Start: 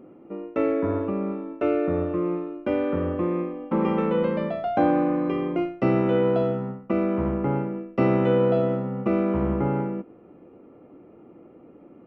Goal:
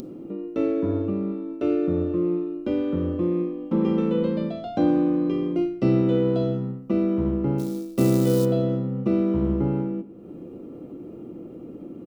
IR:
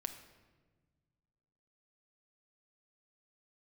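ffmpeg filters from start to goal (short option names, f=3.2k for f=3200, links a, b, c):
-filter_complex "[0:a]acompressor=mode=upward:threshold=-29dB:ratio=2.5,asplit=3[a][b][c];[a]afade=t=out:st=7.58:d=0.02[d];[b]acrusher=bits=6:mode=log:mix=0:aa=0.000001,afade=t=in:st=7.58:d=0.02,afade=t=out:st=8.44:d=0.02[e];[c]afade=t=in:st=8.44:d=0.02[f];[d][e][f]amix=inputs=3:normalize=0,firequalizer=gain_entry='entry(280,0);entry(770,-11);entry(2200,-11);entry(3800,5)':delay=0.05:min_phase=1,asplit=2[g][h];[1:a]atrim=start_sample=2205,afade=t=out:st=0.28:d=0.01,atrim=end_sample=12789[i];[h][i]afir=irnorm=-1:irlink=0,volume=1dB[j];[g][j]amix=inputs=2:normalize=0,volume=-3.5dB"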